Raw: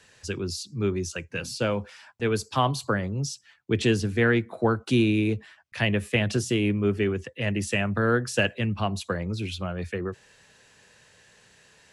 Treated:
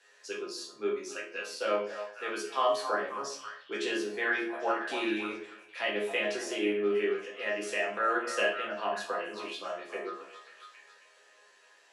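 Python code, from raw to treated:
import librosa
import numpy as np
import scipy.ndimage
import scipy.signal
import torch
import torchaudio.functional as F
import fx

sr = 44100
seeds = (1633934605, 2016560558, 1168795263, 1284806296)

y = scipy.signal.sosfilt(scipy.signal.butter(4, 380.0, 'highpass', fs=sr, output='sos'), x)
y = fx.high_shelf(y, sr, hz=6800.0, db=-6.0)
y = fx.resonator_bank(y, sr, root=37, chord='fifth', decay_s=0.25)
y = fx.echo_stepped(y, sr, ms=271, hz=840.0, octaves=0.7, feedback_pct=70, wet_db=-6.5)
y = fx.room_shoebox(y, sr, seeds[0], volume_m3=53.0, walls='mixed', distance_m=0.74)
y = y * 10.0 ** (2.5 / 20.0)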